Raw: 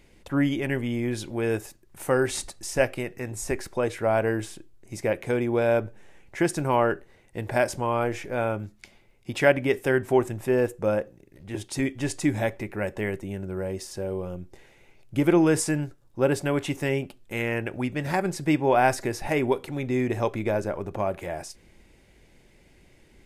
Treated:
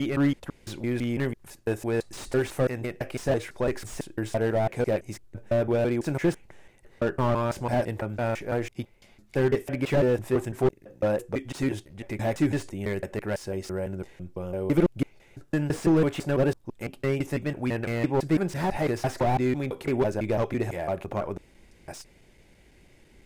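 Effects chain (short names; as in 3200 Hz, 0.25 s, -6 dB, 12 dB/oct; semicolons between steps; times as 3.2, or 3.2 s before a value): slices in reverse order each 0.167 s, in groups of 4; slew limiter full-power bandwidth 56 Hz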